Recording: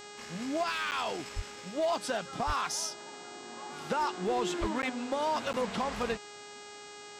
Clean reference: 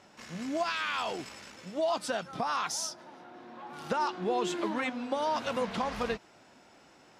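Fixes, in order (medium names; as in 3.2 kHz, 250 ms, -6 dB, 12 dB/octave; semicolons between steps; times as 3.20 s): clip repair -24 dBFS; de-hum 412.9 Hz, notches 20; 1.35–1.47 s: high-pass 140 Hz 24 dB/octave; 2.46–2.58 s: high-pass 140 Hz 24 dB/octave; 4.60–4.72 s: high-pass 140 Hz 24 dB/octave; interpolate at 0.91/4.82/5.53 s, 9.6 ms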